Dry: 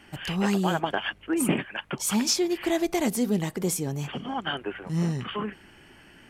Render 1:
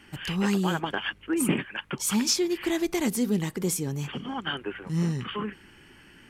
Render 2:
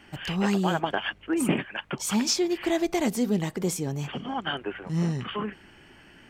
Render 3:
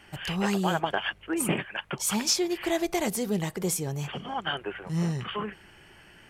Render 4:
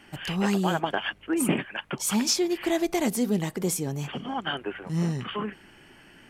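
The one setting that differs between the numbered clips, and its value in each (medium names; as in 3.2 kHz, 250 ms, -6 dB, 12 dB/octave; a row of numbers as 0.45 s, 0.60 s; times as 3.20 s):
peaking EQ, frequency: 670 Hz, 11 kHz, 260 Hz, 70 Hz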